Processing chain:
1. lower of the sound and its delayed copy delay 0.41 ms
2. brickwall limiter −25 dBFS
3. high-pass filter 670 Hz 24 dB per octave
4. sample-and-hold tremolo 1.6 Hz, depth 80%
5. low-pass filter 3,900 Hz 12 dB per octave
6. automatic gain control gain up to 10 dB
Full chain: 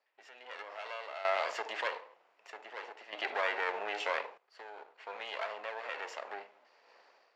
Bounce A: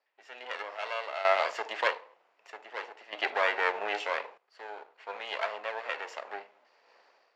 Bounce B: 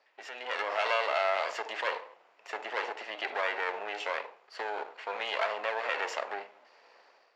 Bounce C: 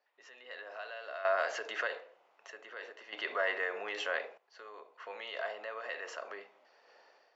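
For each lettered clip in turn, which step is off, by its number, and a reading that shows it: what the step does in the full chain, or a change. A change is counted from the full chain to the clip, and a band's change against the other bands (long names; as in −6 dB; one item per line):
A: 2, average gain reduction 2.5 dB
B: 4, change in momentary loudness spread −5 LU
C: 1, 1 kHz band −4.0 dB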